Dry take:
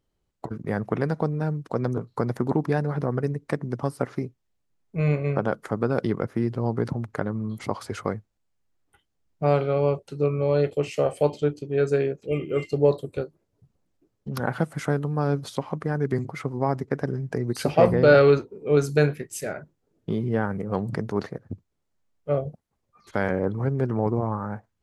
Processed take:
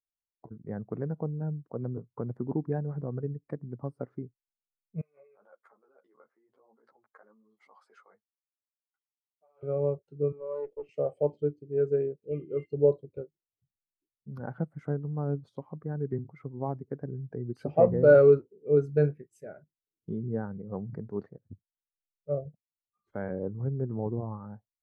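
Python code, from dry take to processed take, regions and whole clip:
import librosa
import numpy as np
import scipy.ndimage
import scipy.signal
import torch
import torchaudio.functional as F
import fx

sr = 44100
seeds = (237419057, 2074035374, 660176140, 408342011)

y = fx.chain(x, sr, fx.over_compress(threshold_db=-30.0, ratio=-1.0),
    fx.highpass(hz=710.0, slope=12),
    fx.ensemble(), at=(5.01, 9.63))
y = fx.chain(y, sr, fx.highpass(hz=290.0, slope=12),
    fx.tube_stage(drive_db=19.0, bias=0.65),
    fx.high_shelf(hz=4800.0, db=-11.5), at=(10.32, 10.89))
y = fx.high_shelf(y, sr, hz=2500.0, db=-8.5)
y = fx.spectral_expand(y, sr, expansion=1.5)
y = y * librosa.db_to_amplitude(-3.5)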